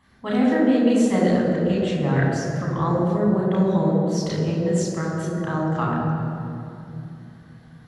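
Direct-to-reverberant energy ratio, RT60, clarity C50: -5.0 dB, 2.8 s, 0.0 dB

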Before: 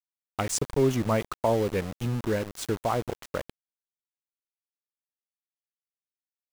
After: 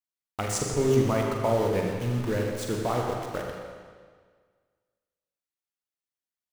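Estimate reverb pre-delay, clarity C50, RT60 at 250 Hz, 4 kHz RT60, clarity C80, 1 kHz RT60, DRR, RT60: 38 ms, 1.0 dB, 1.7 s, 1.5 s, 2.0 dB, 1.7 s, -0.5 dB, 1.7 s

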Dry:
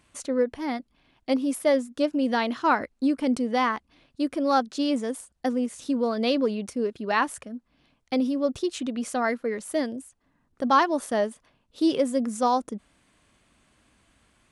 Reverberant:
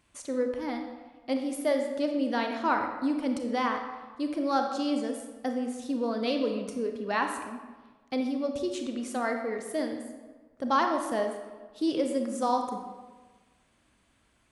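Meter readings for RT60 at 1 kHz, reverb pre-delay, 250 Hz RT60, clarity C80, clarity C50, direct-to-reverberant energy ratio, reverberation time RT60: 1.3 s, 28 ms, 1.4 s, 7.5 dB, 5.5 dB, 4.0 dB, 1.4 s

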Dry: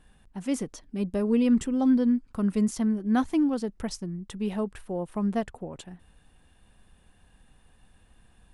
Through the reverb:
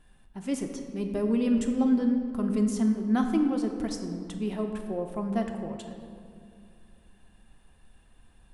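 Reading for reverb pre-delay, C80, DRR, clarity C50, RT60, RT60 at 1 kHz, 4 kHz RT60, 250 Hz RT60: 3 ms, 7.5 dB, 3.5 dB, 6.0 dB, 2.3 s, 2.1 s, 1.3 s, 3.0 s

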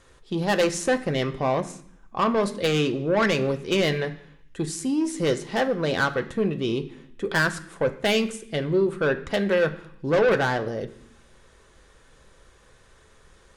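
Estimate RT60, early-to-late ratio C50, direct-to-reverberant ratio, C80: 0.65 s, 14.5 dB, 5.0 dB, 17.0 dB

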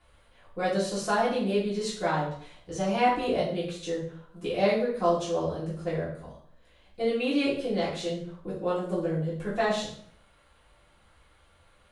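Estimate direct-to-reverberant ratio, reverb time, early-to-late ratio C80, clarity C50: -9.0 dB, 0.60 s, 8.5 dB, 5.0 dB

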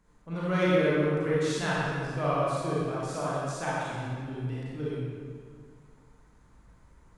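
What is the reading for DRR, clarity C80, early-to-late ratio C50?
-8.5 dB, -2.5 dB, -5.5 dB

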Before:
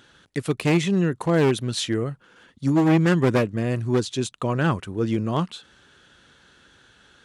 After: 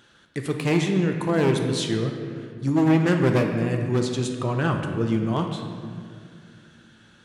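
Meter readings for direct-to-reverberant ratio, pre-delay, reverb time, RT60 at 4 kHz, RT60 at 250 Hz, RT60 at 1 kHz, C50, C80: 3.0 dB, 5 ms, 2.3 s, 1.4 s, 3.3 s, 2.0 s, 4.5 dB, 6.0 dB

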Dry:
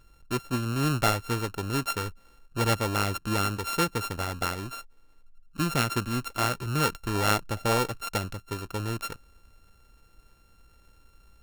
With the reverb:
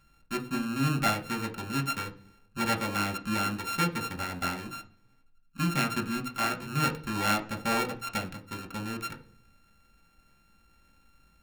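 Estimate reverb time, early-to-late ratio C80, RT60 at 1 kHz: 0.50 s, 19.0 dB, 0.40 s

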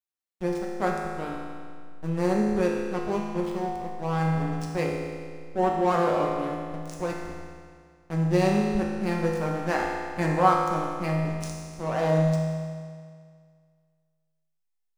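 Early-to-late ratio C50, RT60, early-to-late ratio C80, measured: 1.0 dB, 2.0 s, 2.5 dB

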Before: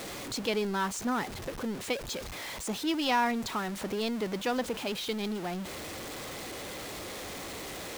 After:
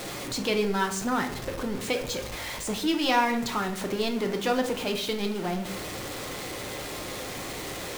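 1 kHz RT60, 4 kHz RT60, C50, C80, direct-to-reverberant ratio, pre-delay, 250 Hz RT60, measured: 0.60 s, 0.40 s, 10.0 dB, 13.5 dB, 4.0 dB, 6 ms, 0.90 s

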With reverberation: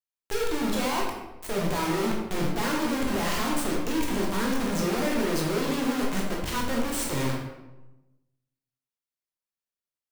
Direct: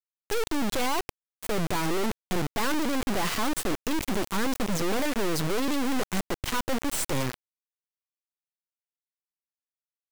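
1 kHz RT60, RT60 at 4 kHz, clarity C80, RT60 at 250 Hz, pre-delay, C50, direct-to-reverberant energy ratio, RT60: 0.95 s, 0.65 s, 5.5 dB, 1.2 s, 13 ms, 2.0 dB, -3.0 dB, 1.0 s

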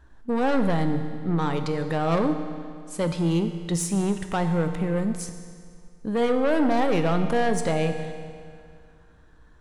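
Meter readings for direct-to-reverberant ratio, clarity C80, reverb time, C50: 6.5 dB, 9.0 dB, 2.2 s, 8.0 dB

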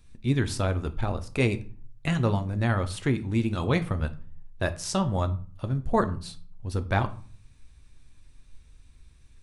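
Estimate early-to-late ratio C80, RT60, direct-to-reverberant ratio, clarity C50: 21.0 dB, 0.40 s, 9.0 dB, 16.5 dB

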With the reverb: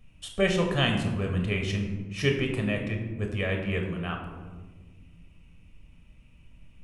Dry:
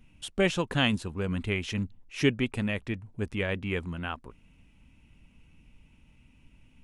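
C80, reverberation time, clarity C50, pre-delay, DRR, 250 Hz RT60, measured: 7.5 dB, 1.4 s, 5.5 dB, 17 ms, 2.0 dB, 2.4 s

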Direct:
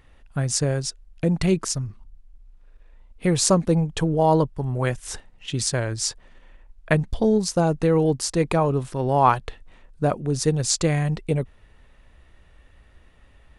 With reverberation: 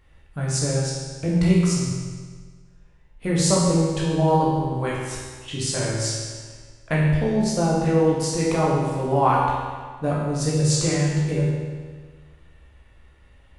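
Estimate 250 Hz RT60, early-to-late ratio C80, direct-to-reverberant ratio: 1.6 s, 1.0 dB, -6.0 dB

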